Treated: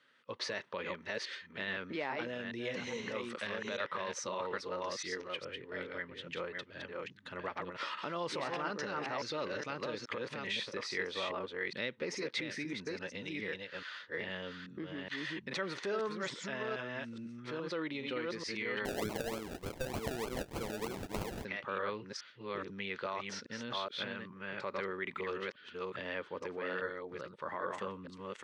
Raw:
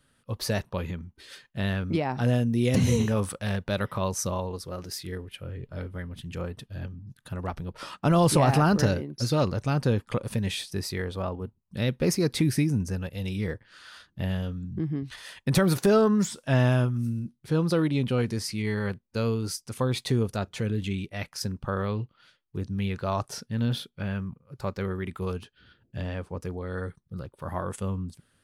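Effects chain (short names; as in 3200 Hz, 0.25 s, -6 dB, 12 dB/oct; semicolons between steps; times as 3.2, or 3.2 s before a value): reverse delay 0.419 s, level -4 dB; compressor 2.5:1, threshold -28 dBFS, peak gain reduction 9.5 dB; limiter -24 dBFS, peak gain reduction 8 dB; speaker cabinet 450–5300 Hz, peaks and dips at 730 Hz -9 dB, 2000 Hz +6 dB, 4900 Hz -5 dB; 18.85–21.45 decimation with a swept rate 33×, swing 60% 3.3 Hz; gain +1 dB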